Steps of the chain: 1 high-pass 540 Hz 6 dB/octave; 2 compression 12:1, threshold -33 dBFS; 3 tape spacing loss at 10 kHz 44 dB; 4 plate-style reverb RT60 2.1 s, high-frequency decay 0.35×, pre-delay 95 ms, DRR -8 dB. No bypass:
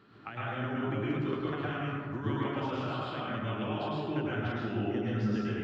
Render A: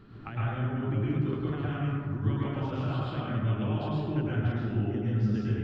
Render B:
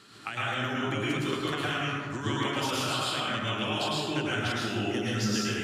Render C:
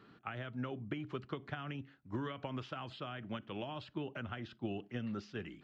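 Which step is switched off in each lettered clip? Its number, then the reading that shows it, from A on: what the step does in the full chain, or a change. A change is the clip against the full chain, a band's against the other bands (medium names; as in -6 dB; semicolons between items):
1, 125 Hz band +10.0 dB; 3, 4 kHz band +12.5 dB; 4, crest factor change +3.5 dB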